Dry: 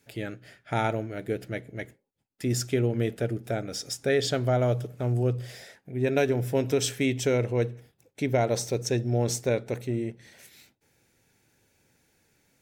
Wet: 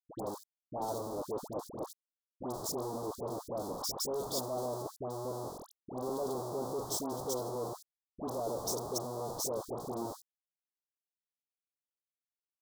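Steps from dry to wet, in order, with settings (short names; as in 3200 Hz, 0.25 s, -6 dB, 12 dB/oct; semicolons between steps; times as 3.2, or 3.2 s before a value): Schmitt trigger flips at -35.5 dBFS; HPF 440 Hz 12 dB/oct; sample leveller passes 3; Butterworth band-stop 2400 Hz, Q 0.65; band shelf 1900 Hz -13 dB 1.1 oct; dispersion highs, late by 0.102 s, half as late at 1300 Hz; gain -7.5 dB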